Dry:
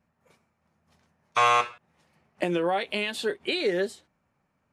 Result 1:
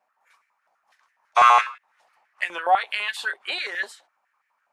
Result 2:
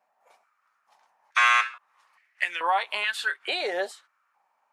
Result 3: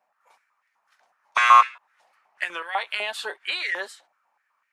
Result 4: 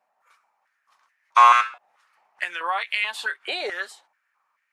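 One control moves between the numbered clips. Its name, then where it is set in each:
step-sequenced high-pass, rate: 12 Hz, 2.3 Hz, 8 Hz, 4.6 Hz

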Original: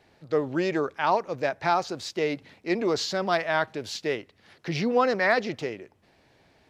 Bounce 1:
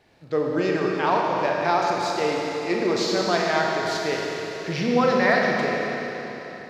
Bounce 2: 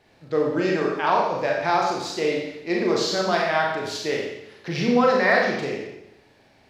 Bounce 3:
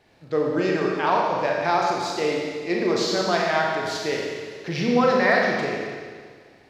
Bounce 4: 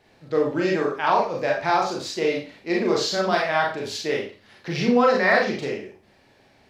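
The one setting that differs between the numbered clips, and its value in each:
Schroeder reverb, RT60: 3.8 s, 0.86 s, 1.8 s, 0.36 s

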